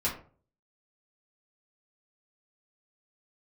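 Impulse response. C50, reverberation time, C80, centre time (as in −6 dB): 8.0 dB, 0.45 s, 13.5 dB, 23 ms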